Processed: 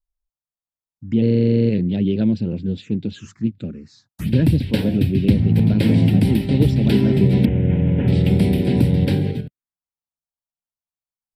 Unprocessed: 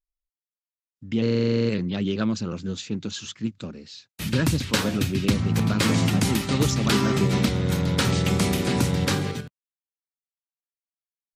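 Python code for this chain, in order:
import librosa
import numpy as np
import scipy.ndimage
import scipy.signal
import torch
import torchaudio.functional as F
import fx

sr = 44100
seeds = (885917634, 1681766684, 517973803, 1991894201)

y = fx.cvsd(x, sr, bps=16000, at=(7.45, 8.08))
y = fx.tilt_shelf(y, sr, db=6.0, hz=920.0)
y = fx.env_phaser(y, sr, low_hz=370.0, high_hz=1200.0, full_db=-22.5)
y = F.gain(torch.from_numpy(y), 2.0).numpy()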